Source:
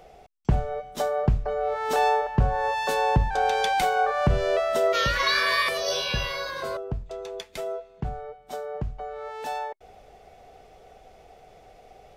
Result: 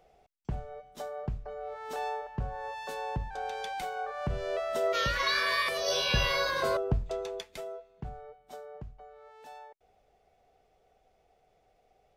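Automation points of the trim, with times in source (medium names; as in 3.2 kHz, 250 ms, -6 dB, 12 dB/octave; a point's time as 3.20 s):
4.07 s -13 dB
4.98 s -5.5 dB
5.67 s -5.5 dB
6.34 s +2.5 dB
7.10 s +2.5 dB
7.71 s -9.5 dB
8.42 s -9.5 dB
9.22 s -17 dB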